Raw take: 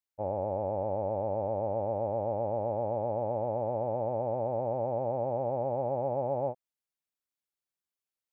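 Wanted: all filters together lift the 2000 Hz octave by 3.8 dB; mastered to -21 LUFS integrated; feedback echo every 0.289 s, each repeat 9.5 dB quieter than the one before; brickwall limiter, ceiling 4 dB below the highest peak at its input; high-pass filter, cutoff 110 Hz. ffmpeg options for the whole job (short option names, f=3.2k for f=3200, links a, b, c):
-af "highpass=110,equalizer=f=2k:t=o:g=5,alimiter=level_in=1dB:limit=-24dB:level=0:latency=1,volume=-1dB,aecho=1:1:289|578|867|1156:0.335|0.111|0.0365|0.012,volume=12.5dB"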